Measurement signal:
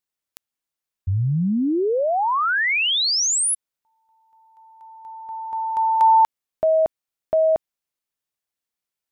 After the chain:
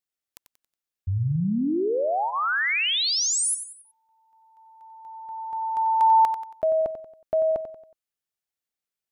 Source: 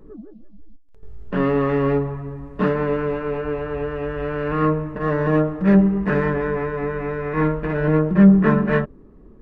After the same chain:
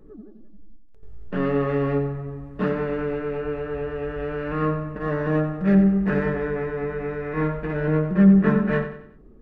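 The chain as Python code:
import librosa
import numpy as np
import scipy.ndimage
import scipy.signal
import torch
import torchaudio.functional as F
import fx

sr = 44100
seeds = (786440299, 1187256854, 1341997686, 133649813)

y = fx.notch(x, sr, hz=1000.0, q=7.6)
y = fx.echo_feedback(y, sr, ms=92, feedback_pct=40, wet_db=-10.0)
y = y * librosa.db_to_amplitude(-4.0)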